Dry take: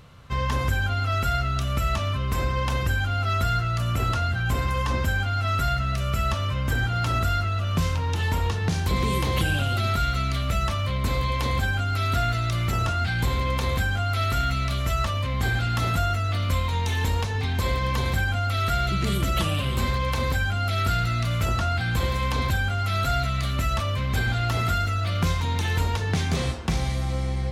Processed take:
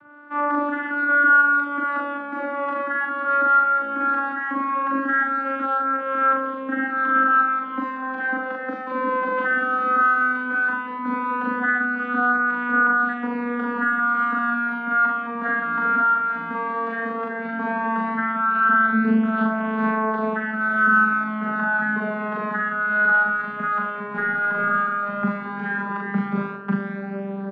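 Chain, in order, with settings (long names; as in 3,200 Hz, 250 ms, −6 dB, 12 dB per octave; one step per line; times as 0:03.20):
vocoder with a gliding carrier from D4, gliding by −7 semitones
low-pass with resonance 1,500 Hz, resonance Q 5.2
double-tracking delay 41 ms −2.5 dB
level −2.5 dB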